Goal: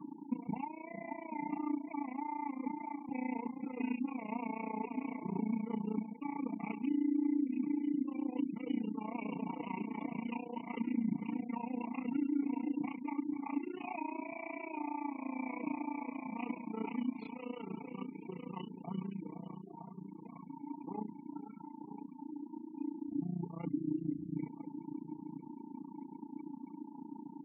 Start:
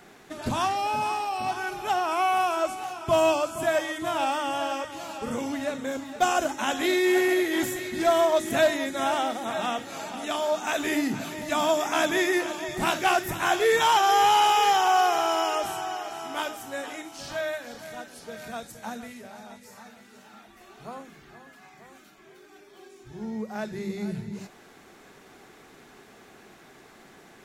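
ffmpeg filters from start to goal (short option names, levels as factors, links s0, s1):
-filter_complex "[0:a]areverse,acompressor=threshold=0.02:ratio=12,areverse,aecho=1:1:1004:0.224,asetrate=35002,aresample=44100,atempo=1.25992,asplit=3[s0][s1][s2];[s0]bandpass=f=300:t=q:w=8,volume=1[s3];[s1]bandpass=f=870:t=q:w=8,volume=0.501[s4];[s2]bandpass=f=2240:t=q:w=8,volume=0.355[s5];[s3][s4][s5]amix=inputs=3:normalize=0,aecho=1:1:4.4:0.71,alimiter=level_in=7.08:limit=0.0631:level=0:latency=1:release=361,volume=0.141,equalizer=f=180:w=0.79:g=7.5,afftfilt=real='re*gte(hypot(re,im),0.00158)':imag='im*gte(hypot(re,im),0.00158)':win_size=1024:overlap=0.75,acompressor=mode=upward:threshold=0.00251:ratio=2.5,tremolo=f=29:d=0.889,volume=3.98"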